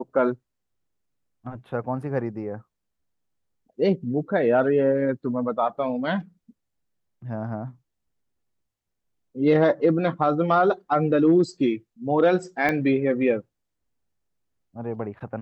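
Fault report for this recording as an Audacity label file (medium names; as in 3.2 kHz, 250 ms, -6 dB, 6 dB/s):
12.690000	12.690000	pop -12 dBFS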